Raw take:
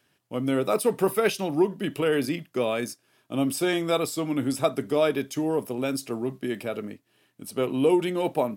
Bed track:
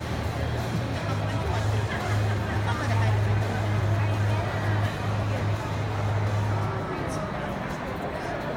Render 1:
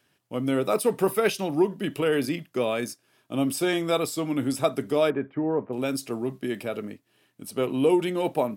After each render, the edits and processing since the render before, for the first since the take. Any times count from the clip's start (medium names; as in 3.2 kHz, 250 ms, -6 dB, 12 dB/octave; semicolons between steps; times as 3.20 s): 5.10–5.73 s: inverse Chebyshev low-pass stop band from 6 kHz, stop band 60 dB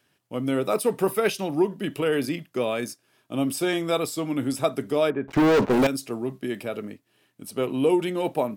5.28–5.87 s: waveshaping leveller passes 5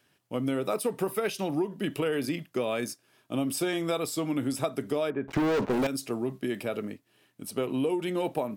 compression, threshold -25 dBFS, peak gain reduction 9 dB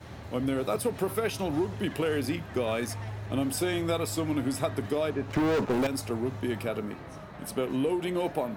add bed track -14 dB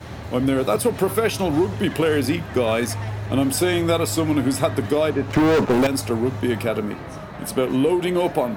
trim +9 dB